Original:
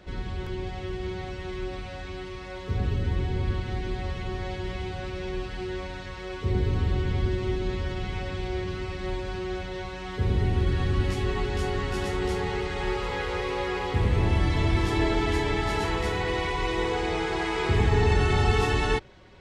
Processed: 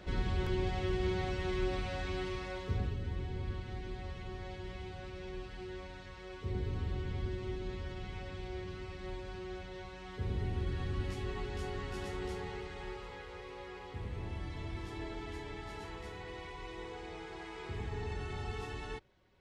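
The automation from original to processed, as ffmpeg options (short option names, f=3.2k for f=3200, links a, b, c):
-af "volume=-0.5dB,afade=t=out:st=2.3:d=0.65:silence=0.281838,afade=t=out:st=12.19:d=1.06:silence=0.473151"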